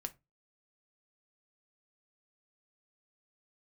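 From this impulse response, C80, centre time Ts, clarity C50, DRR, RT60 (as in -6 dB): 29.5 dB, 3 ms, 21.0 dB, 7.0 dB, 0.25 s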